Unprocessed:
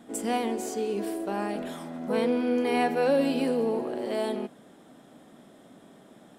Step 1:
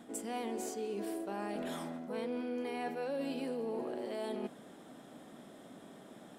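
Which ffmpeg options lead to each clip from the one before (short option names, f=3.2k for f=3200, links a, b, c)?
-af "areverse,acompressor=threshold=-36dB:ratio=5,areverse,lowshelf=f=140:g=-3.5"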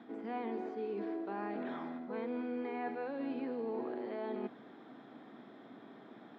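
-filter_complex "[0:a]acrossover=split=2600[a][b];[b]acompressor=threshold=-60dB:ratio=4:attack=1:release=60[c];[a][c]amix=inputs=2:normalize=0,highpass=f=120:w=0.5412,highpass=f=120:w=1.3066,equalizer=f=170:t=q:w=4:g=-10,equalizer=f=570:t=q:w=4:g=-8,equalizer=f=2.9k:t=q:w=4:g=-8,lowpass=f=3.6k:w=0.5412,lowpass=f=3.6k:w=1.3066,volume=1.5dB"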